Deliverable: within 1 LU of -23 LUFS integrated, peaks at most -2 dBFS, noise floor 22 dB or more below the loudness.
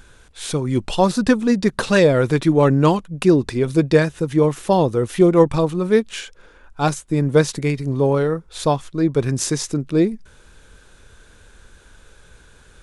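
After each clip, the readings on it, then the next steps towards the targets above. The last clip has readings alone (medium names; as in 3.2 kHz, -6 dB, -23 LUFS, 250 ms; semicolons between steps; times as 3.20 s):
loudness -18.5 LUFS; peak level -1.5 dBFS; loudness target -23.0 LUFS
-> trim -4.5 dB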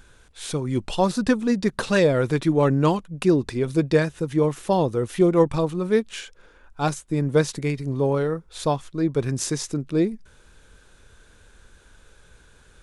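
loudness -23.0 LUFS; peak level -6.0 dBFS; noise floor -54 dBFS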